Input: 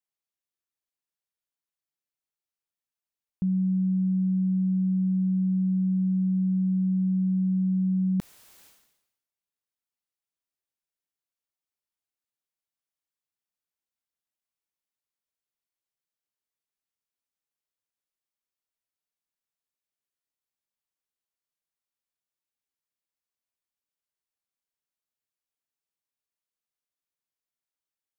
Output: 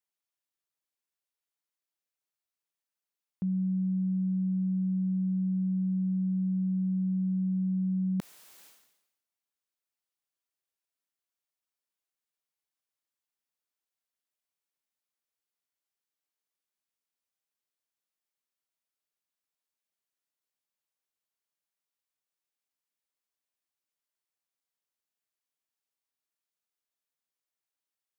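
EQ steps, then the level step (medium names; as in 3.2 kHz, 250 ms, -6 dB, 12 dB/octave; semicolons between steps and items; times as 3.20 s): high-pass 250 Hz 6 dB/octave; 0.0 dB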